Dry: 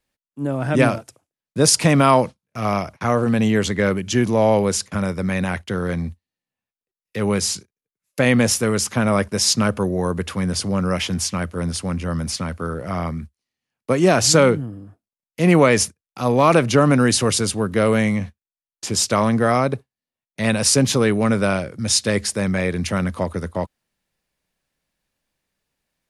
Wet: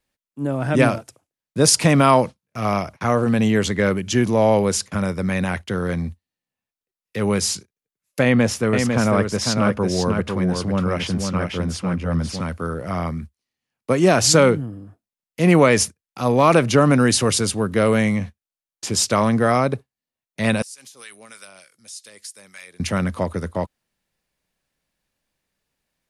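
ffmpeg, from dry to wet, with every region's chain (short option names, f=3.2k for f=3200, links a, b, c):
-filter_complex "[0:a]asettb=1/sr,asplit=3[a][b][c];[a]atrim=end=8.234[d];[b]atrim=start=8.23:end=12.4,asetpts=PTS-STARTPTS,afade=t=in:d=0.004:c=qsin,afade=t=out:st=4.166:d=0.004:c=qsin,lowpass=f=2.8k:p=1,aecho=1:1:500:0.562,atrim=end_sample=183897[e];[c]atrim=start=12.396[f];[d][e]acrossfade=d=0.004:c1=hsin:c2=qsin[g];[g][f]acrossfade=d=0.004:c1=qsin:c2=hsin,asettb=1/sr,asplit=3[h][i][j];[h]atrim=end=20.624[k];[i]atrim=start=20.62:end=22.8,asetpts=PTS-STARTPTS,afade=t=in:d=0.004:c=qsin,afade=t=out:st=2.176:d=0.004:c=qsin,aderivative,acompressor=threshold=-32dB:ratio=8:attack=3.2:release=140:knee=1:detection=peak,acrossover=split=830[l][m];[l]aeval=exprs='val(0)*(1-0.7/2+0.7/2*cos(2*PI*3.3*n/s))':c=same[n];[m]aeval=exprs='val(0)*(1-0.7/2-0.7/2*cos(2*PI*3.3*n/s))':c=same[o];[n][o]amix=inputs=2:normalize=0[p];[j]atrim=start=22.796[q];[k][p]acrossfade=d=0.004:c1=hsin:c2=qsin[r];[r][q]acrossfade=d=0.004:c1=qsin:c2=hsin"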